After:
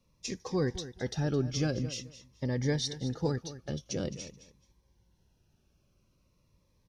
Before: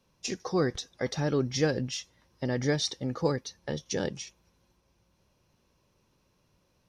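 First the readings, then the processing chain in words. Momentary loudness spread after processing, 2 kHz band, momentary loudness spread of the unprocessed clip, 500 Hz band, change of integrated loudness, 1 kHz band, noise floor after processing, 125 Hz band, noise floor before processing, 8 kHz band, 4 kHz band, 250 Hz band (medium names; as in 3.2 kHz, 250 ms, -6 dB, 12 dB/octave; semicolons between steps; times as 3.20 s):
10 LU, -6.0 dB, 9 LU, -4.5 dB, -3.0 dB, -6.5 dB, -72 dBFS, +0.5 dB, -71 dBFS, -3.5 dB, -4.0 dB, -2.0 dB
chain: bass shelf 110 Hz +10 dB; on a send: feedback delay 215 ms, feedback 20%, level -14 dB; on the sum: Shepard-style phaser falling 0.47 Hz; trim -3.5 dB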